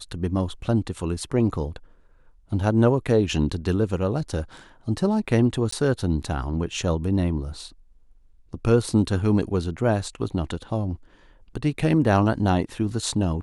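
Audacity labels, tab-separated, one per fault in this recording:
5.710000	5.720000	gap 14 ms

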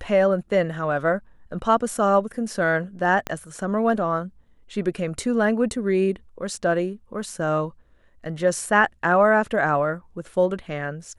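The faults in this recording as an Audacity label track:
3.270000	3.270000	pop -12 dBFS

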